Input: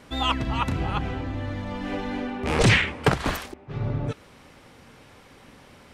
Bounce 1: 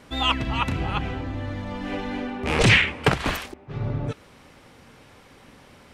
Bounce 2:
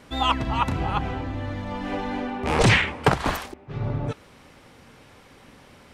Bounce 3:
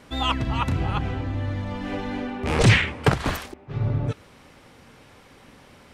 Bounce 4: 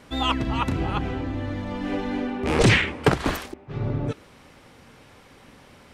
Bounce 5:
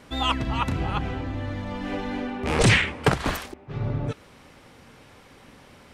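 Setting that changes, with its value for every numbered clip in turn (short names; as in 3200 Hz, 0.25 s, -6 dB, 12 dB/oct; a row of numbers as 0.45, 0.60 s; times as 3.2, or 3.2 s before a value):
dynamic EQ, frequency: 2600, 880, 100, 330, 9000 Hz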